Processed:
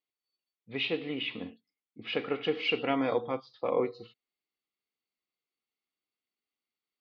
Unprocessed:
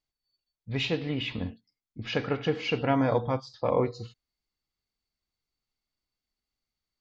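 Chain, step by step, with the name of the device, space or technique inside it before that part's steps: phone earpiece (speaker cabinet 330–3500 Hz, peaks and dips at 610 Hz -7 dB, 920 Hz -8 dB, 1600 Hz -9 dB); 2.35–3.14 high shelf 5500 Hz -> 3600 Hz +11 dB; gain +1 dB

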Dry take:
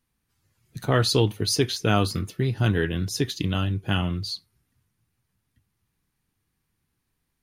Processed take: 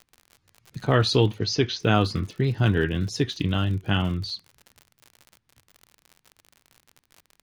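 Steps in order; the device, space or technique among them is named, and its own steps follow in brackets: lo-fi chain (LPF 5100 Hz 12 dB/oct; wow and flutter; crackle 72/s -36 dBFS); 1.39–1.8 Chebyshev low-pass 6200 Hz, order 4; gain +1 dB

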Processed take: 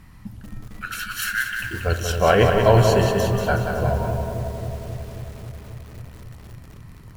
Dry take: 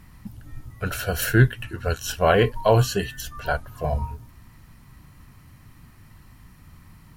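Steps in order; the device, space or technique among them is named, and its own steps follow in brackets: 0.67–1.62 steep high-pass 1100 Hz 96 dB/oct; high shelf 9700 Hz -6 dB; dub delay into a spring reverb (darkening echo 0.269 s, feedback 81%, low-pass 850 Hz, level -6 dB; spring tank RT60 1.4 s, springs 35/60 ms, chirp 25 ms, DRR 10.5 dB); lo-fi delay 0.185 s, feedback 55%, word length 7-bit, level -5.5 dB; gain +1.5 dB

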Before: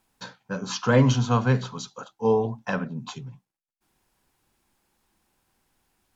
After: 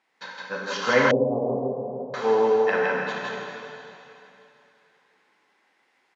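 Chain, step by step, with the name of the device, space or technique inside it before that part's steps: station announcement (BPF 390–4100 Hz; bell 2000 Hz +11 dB 0.32 oct; loudspeakers at several distances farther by 20 m -12 dB, 56 m -2 dB; reverb RT60 3.0 s, pre-delay 15 ms, DRR -1.5 dB); 1.11–2.14 steep low-pass 750 Hz 48 dB/oct

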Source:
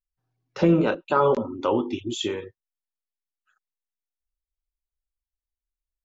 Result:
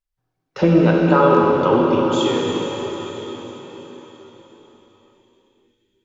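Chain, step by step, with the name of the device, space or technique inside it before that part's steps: cathedral (reverb RT60 4.9 s, pre-delay 33 ms, DRR -2 dB); high shelf 5800 Hz -6 dB; gain +4 dB

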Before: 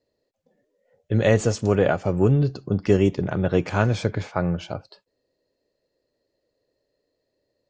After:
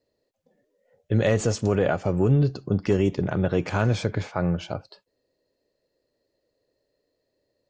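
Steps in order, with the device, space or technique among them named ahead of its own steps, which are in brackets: clipper into limiter (hard clip -7 dBFS, distortion -32 dB; limiter -11 dBFS, peak gain reduction 4 dB)

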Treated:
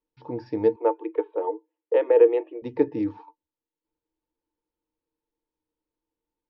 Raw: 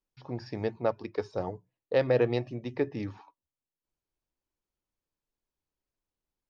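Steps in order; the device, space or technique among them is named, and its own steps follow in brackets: inside a cardboard box (LPF 4200 Hz 12 dB/oct; small resonant body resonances 320/460/890 Hz, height 18 dB, ringing for 90 ms); 0.76–2.62 Chebyshev band-pass 320–3300 Hz, order 5; gain -2.5 dB

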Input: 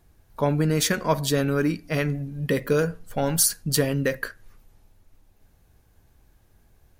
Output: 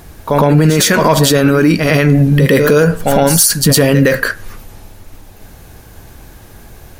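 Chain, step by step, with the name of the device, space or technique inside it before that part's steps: low shelf 120 Hz -6 dB; pre-echo 0.11 s -13 dB; loud club master (compressor 1.5:1, threshold -30 dBFS, peak gain reduction 5.5 dB; hard clip -17 dBFS, distortion -29 dB; maximiser +26.5 dB); gain -1 dB

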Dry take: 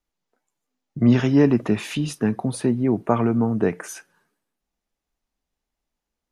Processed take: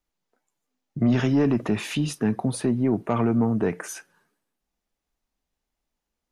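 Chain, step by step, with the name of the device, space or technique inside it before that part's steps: soft clipper into limiter (soft clip -10 dBFS, distortion -17 dB; limiter -14 dBFS, peak gain reduction 3.5 dB)

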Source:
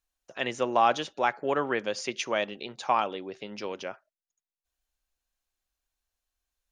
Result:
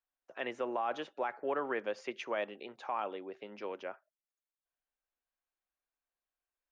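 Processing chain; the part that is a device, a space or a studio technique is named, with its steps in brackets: DJ mixer with the lows and highs turned down (three-band isolator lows -15 dB, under 240 Hz, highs -17 dB, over 2600 Hz; limiter -20 dBFS, peak gain reduction 9.5 dB); gain -4.5 dB

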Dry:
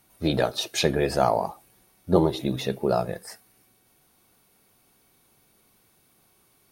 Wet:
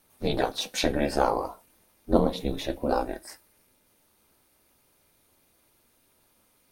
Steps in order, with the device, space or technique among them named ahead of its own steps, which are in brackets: alien voice (ring modulator 140 Hz; flange 0.33 Hz, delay 7.2 ms, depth 8.2 ms, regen -56%); gain +4.5 dB

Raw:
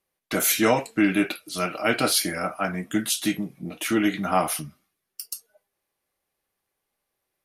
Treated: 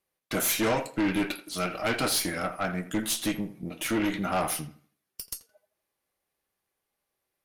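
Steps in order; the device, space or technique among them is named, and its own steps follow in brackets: rockabilly slapback (tube stage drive 21 dB, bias 0.55; tape echo 82 ms, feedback 33%, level -12.5 dB, low-pass 2500 Hz)

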